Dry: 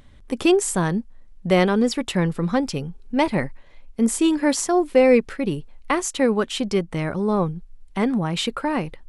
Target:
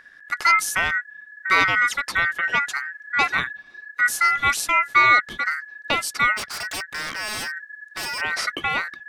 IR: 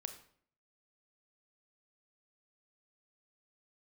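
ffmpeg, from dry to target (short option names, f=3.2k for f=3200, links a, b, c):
-filter_complex "[0:a]aeval=exprs='val(0)*sin(2*PI*1700*n/s)':c=same,asplit=3[a][b][c];[a]afade=t=out:st=6.36:d=0.02[d];[b]aeval=exprs='0.0531*(abs(mod(val(0)/0.0531+3,4)-2)-1)':c=same,afade=t=in:st=6.36:d=0.02,afade=t=out:st=8.2:d=0.02[e];[c]afade=t=in:st=8.2:d=0.02[f];[d][e][f]amix=inputs=3:normalize=0,volume=2dB"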